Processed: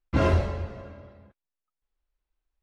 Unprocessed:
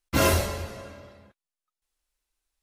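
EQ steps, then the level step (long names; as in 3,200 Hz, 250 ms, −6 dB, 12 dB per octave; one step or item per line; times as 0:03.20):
head-to-tape spacing loss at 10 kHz 30 dB
low-shelf EQ 110 Hz +5.5 dB
0.0 dB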